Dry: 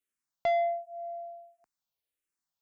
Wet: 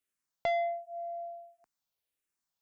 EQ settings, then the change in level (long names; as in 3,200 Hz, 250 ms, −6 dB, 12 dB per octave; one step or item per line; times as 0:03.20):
dynamic equaliser 790 Hz, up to −5 dB, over −38 dBFS, Q 1.1
+1.0 dB